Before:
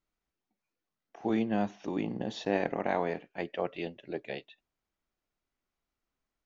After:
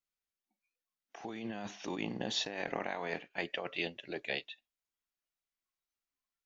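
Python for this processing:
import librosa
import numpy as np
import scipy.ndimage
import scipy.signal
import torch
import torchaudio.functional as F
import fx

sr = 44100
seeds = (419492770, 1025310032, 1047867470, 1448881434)

y = fx.noise_reduce_blind(x, sr, reduce_db=13)
y = fx.over_compress(y, sr, threshold_db=-34.0, ratio=-1.0)
y = fx.tilt_shelf(y, sr, db=-7.0, hz=1200.0)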